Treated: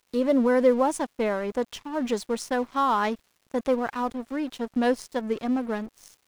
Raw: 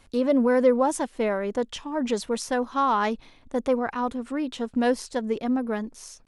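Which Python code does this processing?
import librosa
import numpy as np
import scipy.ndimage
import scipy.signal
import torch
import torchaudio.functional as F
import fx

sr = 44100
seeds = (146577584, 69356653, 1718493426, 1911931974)

y = np.sign(x) * np.maximum(np.abs(x) - 10.0 ** (-42.5 / 20.0), 0.0)
y = fx.dmg_crackle(y, sr, seeds[0], per_s=390.0, level_db=-52.0)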